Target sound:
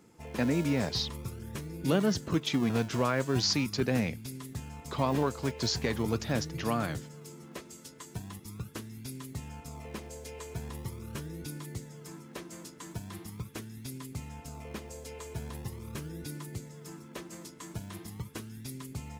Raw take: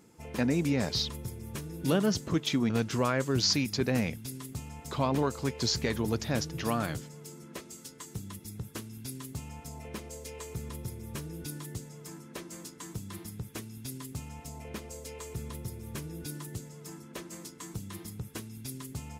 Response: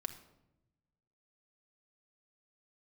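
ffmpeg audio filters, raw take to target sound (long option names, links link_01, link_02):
-filter_complex "[0:a]highshelf=frequency=5600:gain=-4.5,acrossover=split=170[link_01][link_02];[link_01]acrusher=samples=38:mix=1:aa=0.000001:lfo=1:lforange=38:lforate=0.41[link_03];[link_03][link_02]amix=inputs=2:normalize=0"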